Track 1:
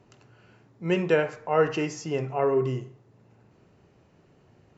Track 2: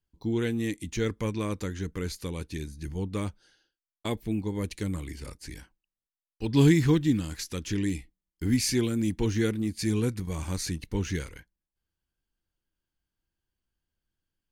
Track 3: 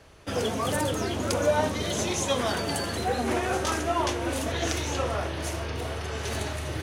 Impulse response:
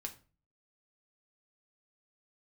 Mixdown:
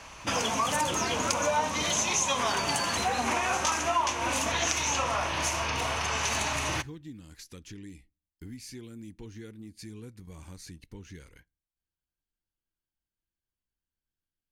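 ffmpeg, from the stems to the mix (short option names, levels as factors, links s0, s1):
-filter_complex "[0:a]volume=0.266[s0];[1:a]acompressor=threshold=0.0178:ratio=3,volume=0.355,asplit=2[s1][s2];[s2]volume=0.106[s3];[2:a]equalizer=f=100:t=o:w=0.67:g=-6,equalizer=f=400:t=o:w=0.67:g=-8,equalizer=f=1000:t=o:w=0.67:g=11,equalizer=f=2500:t=o:w=0.67:g=9,equalizer=f=6300:t=o:w=0.67:g=11,volume=1.26,asplit=2[s4][s5];[s5]volume=0.188[s6];[3:a]atrim=start_sample=2205[s7];[s3][s6]amix=inputs=2:normalize=0[s8];[s8][s7]afir=irnorm=-1:irlink=0[s9];[s0][s1][s4][s9]amix=inputs=4:normalize=0,acompressor=threshold=0.0447:ratio=3"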